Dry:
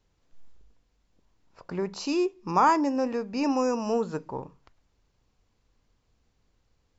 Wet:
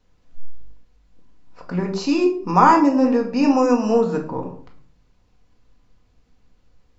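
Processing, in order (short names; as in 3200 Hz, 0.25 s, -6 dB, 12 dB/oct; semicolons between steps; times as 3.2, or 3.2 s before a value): high shelf 5900 Hz -6.5 dB; shoebox room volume 510 m³, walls furnished, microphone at 1.9 m; gain +5.5 dB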